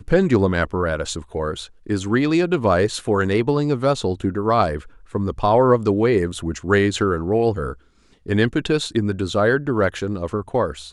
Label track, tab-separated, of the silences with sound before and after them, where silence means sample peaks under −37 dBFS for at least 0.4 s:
7.740000	8.260000	silence